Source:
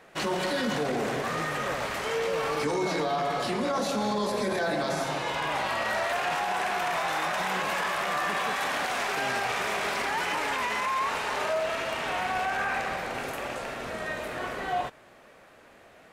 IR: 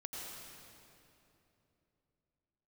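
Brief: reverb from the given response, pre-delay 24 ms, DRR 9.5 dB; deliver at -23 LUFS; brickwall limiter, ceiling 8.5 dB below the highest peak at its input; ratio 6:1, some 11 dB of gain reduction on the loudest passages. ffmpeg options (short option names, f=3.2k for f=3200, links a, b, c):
-filter_complex "[0:a]acompressor=threshold=-37dB:ratio=6,alimiter=level_in=11.5dB:limit=-24dB:level=0:latency=1,volume=-11.5dB,asplit=2[a][b];[1:a]atrim=start_sample=2205,adelay=24[c];[b][c]afir=irnorm=-1:irlink=0,volume=-8.5dB[d];[a][d]amix=inputs=2:normalize=0,volume=20dB"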